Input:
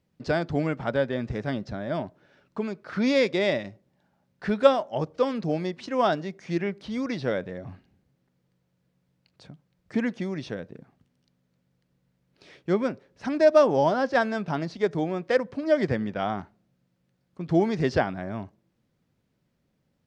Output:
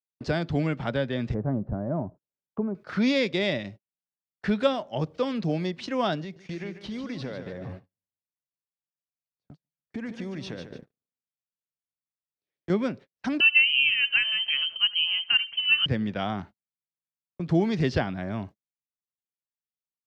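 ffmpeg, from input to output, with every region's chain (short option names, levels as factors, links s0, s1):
-filter_complex "[0:a]asettb=1/sr,asplit=3[s0][s1][s2];[s0]atrim=end=1.344[s3];[s1]atrim=start=1.34:end=2.75,asetpts=PTS-STARTPTS,afade=t=in:d=0.004:c=qsin,afade=t=out:st=1.406:d=0.004:c=qsin,lowpass=f=1100:w=0.5412,lowpass=f=1100:w=1.3066,lowshelf=f=65:g=12[s4];[s2]atrim=start=2.746[s5];[s3][s4]acrossfade=d=0.004:c1=hsin:c2=qsin[s6];[s6][s5]acrossfade=d=0.004:c1=qsin:c2=hsin,asettb=1/sr,asplit=3[s7][s8][s9];[s7]atrim=end=6.214[s10];[s8]atrim=start=6.21:end=12.7,asetpts=PTS-STARTPTS,afade=t=in:d=0.004:c=qsin,afade=t=out:st=6.486:d=0.004:c=qsin,acompressor=threshold=0.02:ratio=5:attack=3.2:release=140:knee=1:detection=peak,aecho=1:1:148|296|444|592:0.398|0.135|0.046|0.0156,atrim=end_sample=286209[s11];[s9]atrim=start=12.696[s12];[s10][s11]acrossfade=d=0.004:c1=hsin:c2=qsin[s13];[s13][s12]acrossfade=d=0.004:c1=qsin:c2=hsin,asettb=1/sr,asplit=3[s14][s15][s16];[s14]atrim=end=13.404[s17];[s15]atrim=start=13.4:end=15.86,asetpts=PTS-STARTPTS,afade=t=in:d=0.004:c=qsin,afade=t=out:st=2.456:d=0.004:c=qsin,lowpass=f=2800:t=q:w=0.5098,lowpass=f=2800:t=q:w=0.6013,lowpass=f=2800:t=q:w=0.9,lowpass=f=2800:t=q:w=2.563,afreqshift=-3300,aecho=1:1:75:0.0841,atrim=end_sample=108486[s18];[s16]atrim=start=15.856[s19];[s17][s18]acrossfade=d=0.004:c1=hsin:c2=qsin[s20];[s20][s19]acrossfade=d=0.004:c1=qsin:c2=hsin,agate=range=0.00562:threshold=0.00794:ratio=16:detection=peak,adynamicequalizer=threshold=0.00501:dfrequency=3200:dqfactor=0.98:tfrequency=3200:tqfactor=0.98:attack=5:release=100:ratio=0.375:range=4:mode=boostabove:tftype=bell,acrossover=split=260[s21][s22];[s22]acompressor=threshold=0.00794:ratio=1.5[s23];[s21][s23]amix=inputs=2:normalize=0,volume=1.41"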